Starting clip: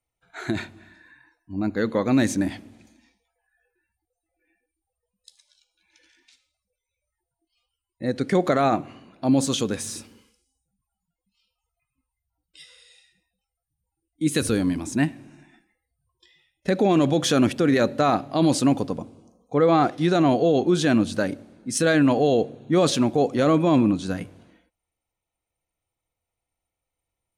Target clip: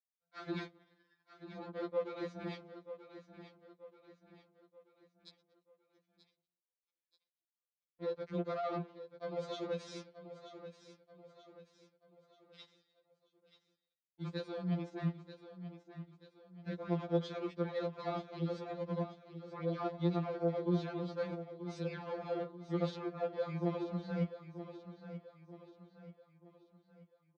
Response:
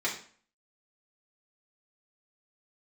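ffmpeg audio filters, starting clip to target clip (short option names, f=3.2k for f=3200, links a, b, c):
-af "alimiter=limit=-19.5dB:level=0:latency=1:release=441,areverse,acompressor=threshold=-37dB:ratio=10,areverse,aeval=exprs='0.0398*(cos(1*acos(clip(val(0)/0.0398,-1,1)))-cos(1*PI/2))+0.00562*(cos(7*acos(clip(val(0)/0.0398,-1,1)))-cos(7*PI/2))':c=same,highpass=160,equalizer=f=170:t=q:w=4:g=6,equalizer=f=260:t=q:w=4:g=-8,equalizer=f=470:t=q:w=4:g=9,equalizer=f=830:t=q:w=4:g=-3,equalizer=f=1.8k:t=q:w=4:g=-7,equalizer=f=2.8k:t=q:w=4:g=-9,lowpass=f=4.1k:w=0.5412,lowpass=f=4.1k:w=1.3066,aecho=1:1:933|1866|2799|3732:0.251|0.111|0.0486|0.0214,afftfilt=real='re*2.83*eq(mod(b,8),0)':imag='im*2.83*eq(mod(b,8),0)':win_size=2048:overlap=0.75,volume=4.5dB"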